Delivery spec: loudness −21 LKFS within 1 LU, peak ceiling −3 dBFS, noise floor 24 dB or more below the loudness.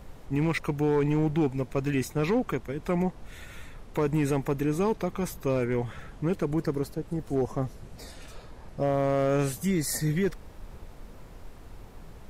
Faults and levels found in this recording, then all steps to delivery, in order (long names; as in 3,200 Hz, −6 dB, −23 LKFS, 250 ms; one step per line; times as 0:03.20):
share of clipped samples 1.1%; peaks flattened at −19.0 dBFS; background noise floor −48 dBFS; target noise floor −53 dBFS; integrated loudness −28.5 LKFS; sample peak −19.0 dBFS; target loudness −21.0 LKFS
→ clipped peaks rebuilt −19 dBFS
noise reduction from a noise print 6 dB
level +7.5 dB